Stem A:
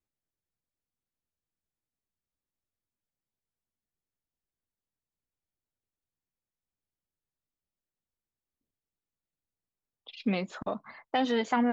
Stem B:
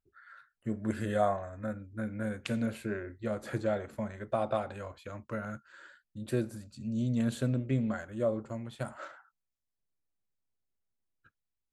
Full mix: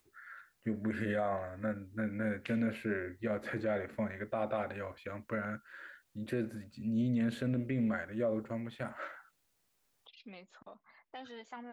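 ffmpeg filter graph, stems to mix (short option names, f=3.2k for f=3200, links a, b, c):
-filter_complex "[0:a]lowshelf=f=370:g=-8,acompressor=mode=upward:threshold=-33dB:ratio=2.5,volume=-17.5dB[a];[1:a]equalizer=f=250:t=o:w=1:g=5,equalizer=f=500:t=o:w=1:g=4,equalizer=f=2k:t=o:w=1:g=11,equalizer=f=8k:t=o:w=1:g=-8,volume=-4dB[b];[a][b]amix=inputs=2:normalize=0,alimiter=level_in=1dB:limit=-24dB:level=0:latency=1:release=38,volume=-1dB"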